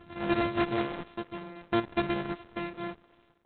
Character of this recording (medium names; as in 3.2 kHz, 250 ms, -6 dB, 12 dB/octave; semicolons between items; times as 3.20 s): a buzz of ramps at a fixed pitch in blocks of 128 samples; tremolo saw down 0.58 Hz, depth 95%; Opus